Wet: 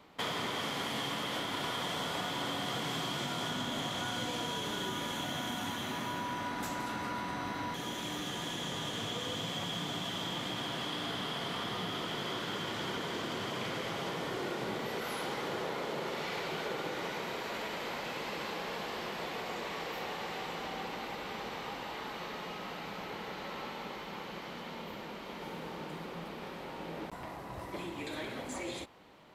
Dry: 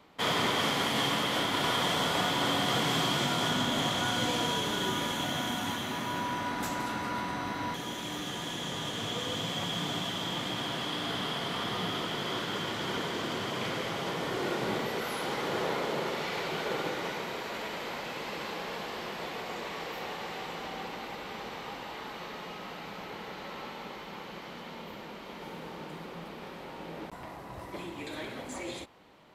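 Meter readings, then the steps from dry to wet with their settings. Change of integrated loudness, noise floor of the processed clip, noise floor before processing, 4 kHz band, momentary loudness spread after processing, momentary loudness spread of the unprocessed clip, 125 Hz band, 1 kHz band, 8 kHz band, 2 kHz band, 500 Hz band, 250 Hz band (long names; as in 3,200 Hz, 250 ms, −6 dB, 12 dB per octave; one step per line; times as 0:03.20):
−5.0 dB, −44 dBFS, −44 dBFS, −5.0 dB, 8 LU, 15 LU, −4.5 dB, −4.5 dB, −5.0 dB, −4.5 dB, −4.0 dB, −4.5 dB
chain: downward compressor 4 to 1, threshold −34 dBFS, peak gain reduction 8 dB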